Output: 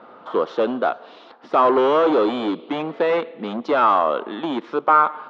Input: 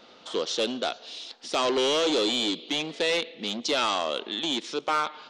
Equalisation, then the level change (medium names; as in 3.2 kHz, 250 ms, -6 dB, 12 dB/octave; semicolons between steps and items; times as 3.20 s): high-pass 84 Hz; resonant low-pass 1.2 kHz, resonance Q 2; +7.0 dB